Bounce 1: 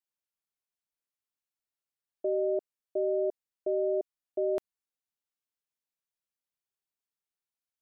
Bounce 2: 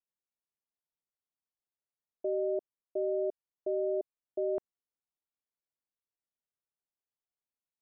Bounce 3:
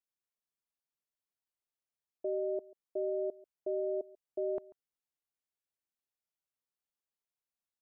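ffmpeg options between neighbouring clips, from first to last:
ffmpeg -i in.wav -af "lowpass=1100,volume=-2.5dB" out.wav
ffmpeg -i in.wav -af "aecho=1:1:140:0.0841,volume=-2.5dB" out.wav

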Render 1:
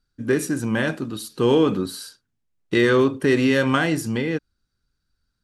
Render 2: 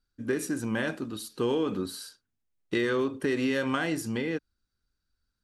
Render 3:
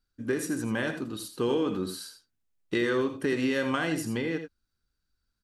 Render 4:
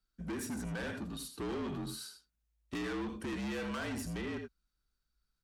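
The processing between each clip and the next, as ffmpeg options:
ffmpeg -i in.wav -af "equalizer=frequency=140:width=2.5:gain=-6,acompressor=threshold=-18dB:ratio=6,volume=-5.5dB" out.wav
ffmpeg -i in.wav -af "aecho=1:1:79|85|96:0.211|0.224|0.126" out.wav
ffmpeg -i in.wav -af "asoftclip=type=tanh:threshold=-31.5dB,afreqshift=-55,volume=-3.5dB" out.wav

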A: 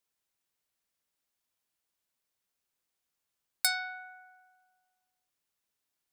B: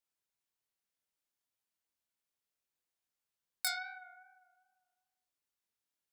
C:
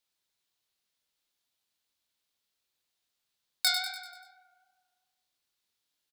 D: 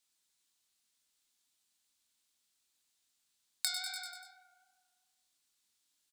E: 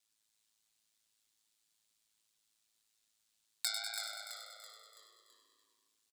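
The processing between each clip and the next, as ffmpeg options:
ffmpeg -i in.wav -af "flanger=delay=20:depth=5.8:speed=2.5,volume=-3.5dB" out.wav
ffmpeg -i in.wav -filter_complex "[0:a]equalizer=frequency=3900:width_type=o:width=0.93:gain=8.5,asplit=2[link_01][link_02];[link_02]aecho=0:1:97|194|291|388|485|582:0.355|0.185|0.0959|0.0499|0.0259|0.0135[link_03];[link_01][link_03]amix=inputs=2:normalize=0,volume=4.5dB" out.wav
ffmpeg -i in.wav -af "equalizer=frequency=125:width_type=o:width=1:gain=-5,equalizer=frequency=250:width_type=o:width=1:gain=4,equalizer=frequency=500:width_type=o:width=1:gain=-6,equalizer=frequency=8000:width_type=o:width=1:gain=9,acompressor=threshold=-34dB:ratio=4" out.wav
ffmpeg -i in.wav -filter_complex "[0:a]aeval=exprs='val(0)*sin(2*PI*54*n/s)':channel_layout=same,asplit=2[link_01][link_02];[link_02]asplit=5[link_03][link_04][link_05][link_06][link_07];[link_03]adelay=331,afreqshift=-81,volume=-7dB[link_08];[link_04]adelay=662,afreqshift=-162,volume=-13.7dB[link_09];[link_05]adelay=993,afreqshift=-243,volume=-20.5dB[link_10];[link_06]adelay=1324,afreqshift=-324,volume=-27.2dB[link_11];[link_07]adelay=1655,afreqshift=-405,volume=-34dB[link_12];[link_08][link_09][link_10][link_11][link_12]amix=inputs=5:normalize=0[link_13];[link_01][link_13]amix=inputs=2:normalize=0,volume=2dB" out.wav

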